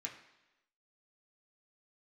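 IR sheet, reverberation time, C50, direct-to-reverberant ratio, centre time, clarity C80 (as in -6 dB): 1.0 s, 8.5 dB, -2.0 dB, 22 ms, 11.0 dB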